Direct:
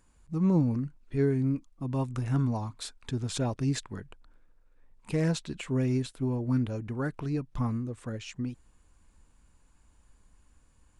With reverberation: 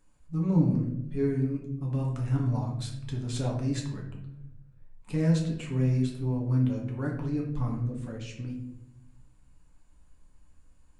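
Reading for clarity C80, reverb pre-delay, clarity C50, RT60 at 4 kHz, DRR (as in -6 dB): 9.0 dB, 4 ms, 5.0 dB, 0.45 s, -1.5 dB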